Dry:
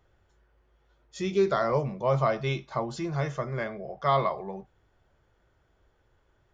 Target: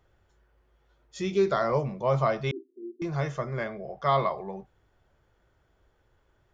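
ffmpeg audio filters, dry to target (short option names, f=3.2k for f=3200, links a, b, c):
-filter_complex "[0:a]asettb=1/sr,asplit=3[a][b][c];[a]atrim=end=2.514[d];[b]atrim=start=2.51:end=3.02,asetpts=PTS-STARTPTS,afade=t=in:d=0.004:c=qsin,afade=t=out:st=0.506:d=0.004:c=qsin,asuperpass=centerf=320:order=12:qfactor=2.2[e];[c]atrim=start=3.016[f];[d][e]acrossfade=d=0.004:c1=hsin:c2=qsin[g];[g][f]acrossfade=d=0.004:c1=qsin:c2=hsin"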